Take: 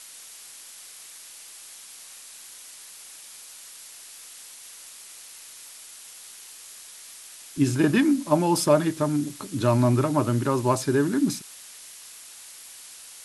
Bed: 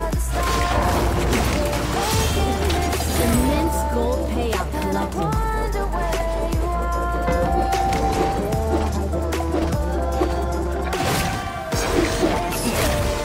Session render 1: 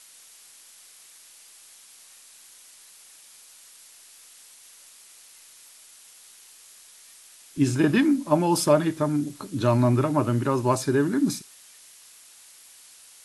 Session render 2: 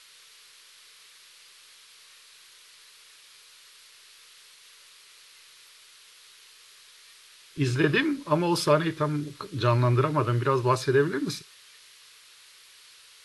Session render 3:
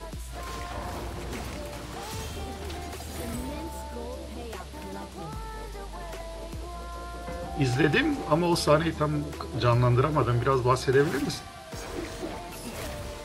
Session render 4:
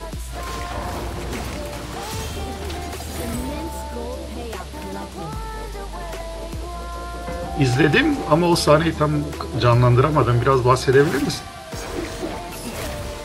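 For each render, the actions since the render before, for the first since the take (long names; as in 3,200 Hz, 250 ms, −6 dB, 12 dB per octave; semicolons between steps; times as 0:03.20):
noise reduction from a noise print 6 dB
drawn EQ curve 160 Hz 0 dB, 230 Hz −14 dB, 430 Hz +4 dB, 750 Hz −9 dB, 1,100 Hz +3 dB, 4,200 Hz +4 dB, 7,100 Hz −8 dB
mix in bed −16 dB
level +7.5 dB; brickwall limiter −2 dBFS, peak gain reduction 1.5 dB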